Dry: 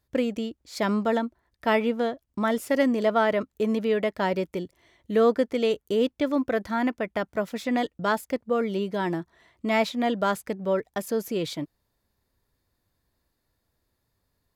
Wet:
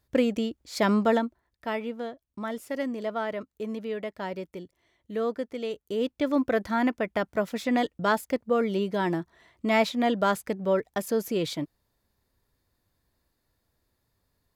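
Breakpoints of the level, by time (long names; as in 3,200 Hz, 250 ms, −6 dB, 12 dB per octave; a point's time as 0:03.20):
0:01.10 +2 dB
0:01.72 −8.5 dB
0:05.72 −8.5 dB
0:06.37 +0.5 dB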